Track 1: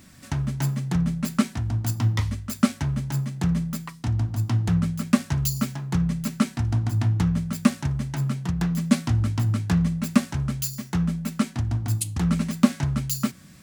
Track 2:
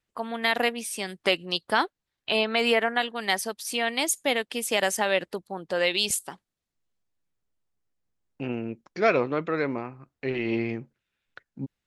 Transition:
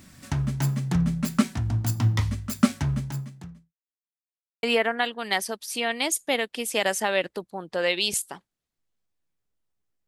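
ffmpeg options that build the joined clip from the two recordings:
ffmpeg -i cue0.wav -i cue1.wav -filter_complex "[0:a]apad=whole_dur=10.07,atrim=end=10.07,asplit=2[link_01][link_02];[link_01]atrim=end=3.74,asetpts=PTS-STARTPTS,afade=type=out:start_time=2.94:duration=0.8:curve=qua[link_03];[link_02]atrim=start=3.74:end=4.63,asetpts=PTS-STARTPTS,volume=0[link_04];[1:a]atrim=start=2.6:end=8.04,asetpts=PTS-STARTPTS,afade=type=in:duration=0.004:curve=hsin[link_05];[link_03][link_04][link_05]concat=n=3:v=0:a=1" out.wav

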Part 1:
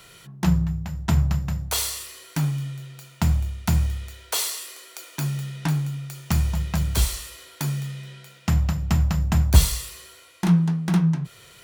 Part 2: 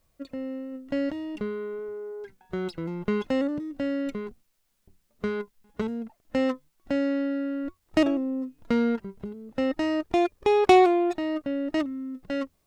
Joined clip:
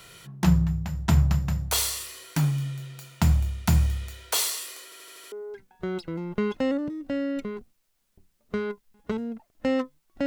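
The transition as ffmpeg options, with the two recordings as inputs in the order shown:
ffmpeg -i cue0.wav -i cue1.wav -filter_complex "[0:a]apad=whole_dur=10.26,atrim=end=10.26,asplit=6[link_01][link_02][link_03][link_04][link_05][link_06];[link_01]atrim=end=4.922[link_07];[link_02]atrim=start=4.838:end=4.922[link_08];[link_03]atrim=start=4.838:end=4.922[link_09];[link_04]atrim=start=4.838:end=4.922[link_10];[link_05]atrim=start=4.838:end=4.922[link_11];[link_06]atrim=start=4.838:end=4.922[link_12];[1:a]atrim=start=2.018:end=6.96[link_13];[link_07][link_08]acrossfade=duration=0.004:curve1=hsin:curve2=hsin[link_14];[link_14][link_09]acrossfade=duration=0.004:curve1=hsin:curve2=hsin[link_15];[link_15][link_10]acrossfade=duration=0.004:curve1=hsin:curve2=hsin[link_16];[link_16][link_11]acrossfade=duration=0.004:curve1=hsin:curve2=hsin[link_17];[link_17][link_12]acrossfade=duration=0.004:curve1=hsin:curve2=hsin[link_18];[link_18][link_13]acrossfade=duration=0.004:curve1=hsin:curve2=hsin" out.wav

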